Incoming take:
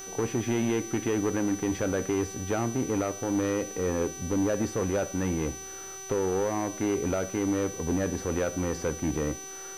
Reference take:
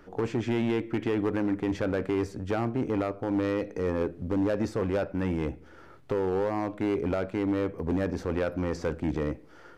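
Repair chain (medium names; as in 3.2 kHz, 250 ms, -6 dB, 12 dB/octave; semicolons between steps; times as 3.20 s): de-hum 385.5 Hz, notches 39; band-stop 6 kHz, Q 30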